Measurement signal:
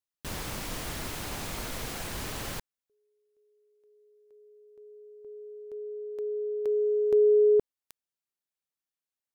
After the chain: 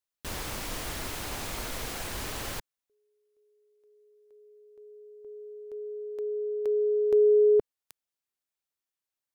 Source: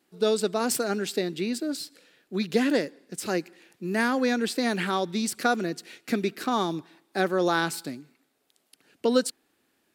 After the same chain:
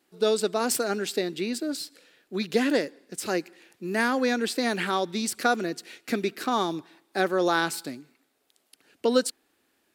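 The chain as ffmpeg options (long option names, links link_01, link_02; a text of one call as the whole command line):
ffmpeg -i in.wav -af "equalizer=frequency=160:width=1.2:gain=-5,volume=1dB" out.wav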